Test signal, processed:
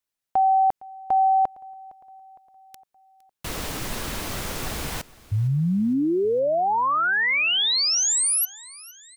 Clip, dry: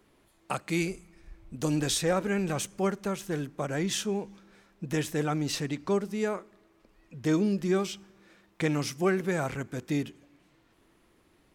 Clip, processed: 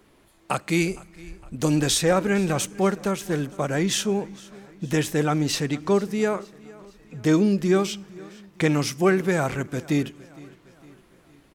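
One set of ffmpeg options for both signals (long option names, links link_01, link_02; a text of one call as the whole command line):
ffmpeg -i in.wav -af "aecho=1:1:460|920|1380|1840:0.0794|0.0413|0.0215|0.0112,volume=6.5dB" out.wav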